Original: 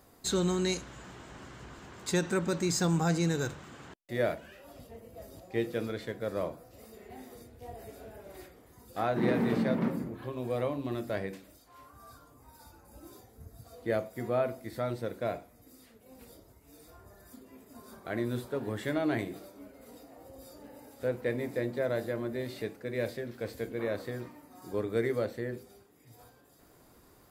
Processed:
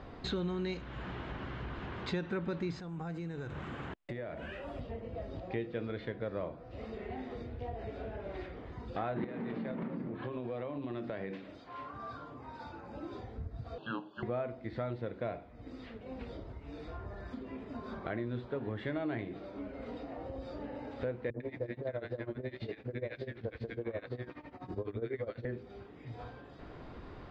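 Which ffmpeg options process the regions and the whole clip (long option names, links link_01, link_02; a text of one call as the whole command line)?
ffmpeg -i in.wav -filter_complex "[0:a]asettb=1/sr,asplit=3[link_01][link_02][link_03];[link_01]atrim=end=2.804[link_04];[link_02]atrim=start=2.8:end=4.81,asetpts=PTS-STARTPTS,afade=type=in:duration=0.004:curve=qsin,afade=type=out:start_time=2.006:duration=0.004:curve=qsin,highshelf=frequency=6900:width_type=q:width=1.5:gain=13,acompressor=threshold=-42dB:ratio=6:attack=3.2:release=140:knee=1:detection=peak[link_05];[link_03]atrim=start=4.806[link_06];[link_04][link_05]acrossfade=duration=0.004:curve1=hsin:curve2=qsin[link_07];[link_07][link_06]acrossfade=duration=0.004:curve1=qsin:curve2=hsin,asettb=1/sr,asplit=3[link_08][link_09][link_10];[link_08]atrim=end=9.244[link_11];[link_09]atrim=start=9.24:end=13.13,asetpts=PTS-STARTPTS,afade=type=in:duration=0.004:curve=qsin,afade=type=out:start_time=3.886:duration=0.004:curve=qsin,highpass=140,acompressor=threshold=-36dB:ratio=4:attack=3.2:release=140:knee=1:detection=peak[link_12];[link_10]atrim=start=13.126[link_13];[link_11][link_12]acrossfade=duration=0.004:curve1=hsin:curve2=qsin[link_14];[link_14][link_13]acrossfade=duration=0.004:curve1=qsin:curve2=hsin,asettb=1/sr,asplit=3[link_15][link_16][link_17];[link_15]atrim=end=13.784[link_18];[link_16]atrim=start=13.78:end=14.23,asetpts=PTS-STARTPTS,afade=type=in:duration=0.004:curve=qsin,afade=type=out:start_time=0.446:duration=0.004:curve=qsin,afreqshift=-340,asuperstop=centerf=2100:order=12:qfactor=2.2,highpass=460,equalizer=frequency=510:width_type=q:width=4:gain=7,equalizer=frequency=1000:width_type=q:width=4:gain=3,equalizer=frequency=1700:width_type=q:width=4:gain=-5,equalizer=frequency=2500:width_type=q:width=4:gain=8,equalizer=frequency=5500:width_type=q:width=4:gain=-5,lowpass=frequency=6100:width=0.5412,lowpass=frequency=6100:width=1.3066[link_19];[link_17]atrim=start=14.226[link_20];[link_18][link_19]acrossfade=duration=0.004:curve1=hsin:curve2=qsin[link_21];[link_21][link_20]acrossfade=duration=0.004:curve1=qsin:curve2=hsin,asettb=1/sr,asplit=3[link_22][link_23][link_24];[link_22]atrim=end=21.304[link_25];[link_23]atrim=start=21.3:end=25.45,asetpts=PTS-STARTPTS,afade=type=in:duration=0.004:curve=qsin,afade=type=out:start_time=4.146:duration=0.004:curve=qsin,acrossover=split=240|1200[link_26][link_27][link_28];[link_27]adelay=40[link_29];[link_28]adelay=100[link_30];[link_26][link_29][link_30]amix=inputs=3:normalize=0,atrim=end_sample=183015,tremolo=f=12:d=0.87[link_31];[link_24]atrim=start=25.446[link_32];[link_25][link_31]acrossfade=duration=0.004:curve1=hsin:curve2=qsin[link_33];[link_33][link_32]acrossfade=duration=0.004:curve1=qsin:curve2=hsin,lowpass=frequency=3500:width=0.5412,lowpass=frequency=3500:width=1.3066,lowshelf=frequency=85:gain=8,acompressor=threshold=-50dB:ratio=3,volume=10.5dB" out.wav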